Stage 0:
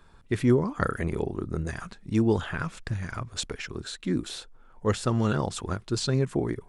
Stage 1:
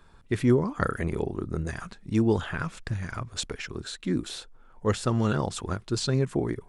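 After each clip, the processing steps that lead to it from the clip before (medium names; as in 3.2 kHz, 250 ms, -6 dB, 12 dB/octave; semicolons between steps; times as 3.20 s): no audible change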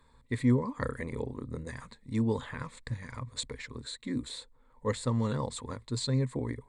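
rippled EQ curve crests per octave 1, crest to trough 12 dB; trim -7.5 dB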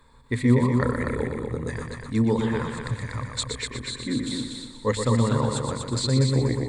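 hum notches 50/100/150/200/250 Hz; multi-head delay 121 ms, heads first and second, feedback 41%, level -6.5 dB; trim +7 dB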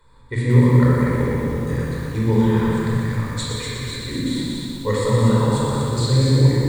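simulated room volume 2200 m³, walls mixed, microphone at 4.7 m; bit-crushed delay 184 ms, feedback 55%, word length 6-bit, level -7.5 dB; trim -4.5 dB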